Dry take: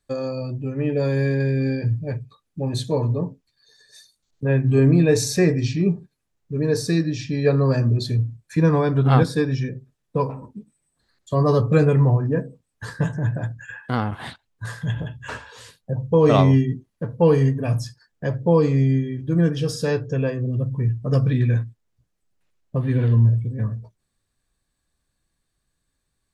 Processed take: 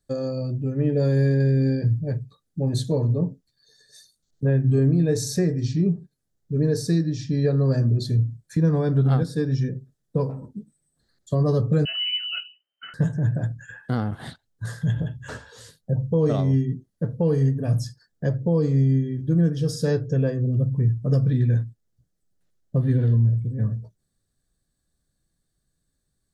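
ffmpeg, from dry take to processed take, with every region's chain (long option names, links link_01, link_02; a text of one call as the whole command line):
ffmpeg -i in.wav -filter_complex "[0:a]asettb=1/sr,asplit=3[link_01][link_02][link_03];[link_01]atrim=end=11.854[link_04];[link_02]atrim=start=11.85:end=12.94,asetpts=PTS-STARTPTS,afade=type=in:duration=0.004:curve=qsin,afade=type=out:start_time=1.086:duration=0.004:curve=qsin,lowpass=frequency=2600:width_type=q:width=0.5098,lowpass=frequency=2600:width_type=q:width=0.6013,lowpass=frequency=2600:width_type=q:width=0.9,lowpass=frequency=2600:width_type=q:width=2.563,afreqshift=-3100,highpass=110[link_05];[link_03]atrim=start=12.936[link_06];[link_04][link_05]acrossfade=duration=0.004:curve1=hsin:curve2=qsin[link_07];[link_07][link_06]acrossfade=duration=0.004:curve1=qsin:curve2=hsin,equalizer=frequency=160:width_type=o:width=0.67:gain=4,equalizer=frequency=1000:width_type=o:width=0.67:gain=-9,equalizer=frequency=2500:width_type=o:width=0.67:gain=-12,alimiter=limit=-12.5dB:level=0:latency=1:release=455" out.wav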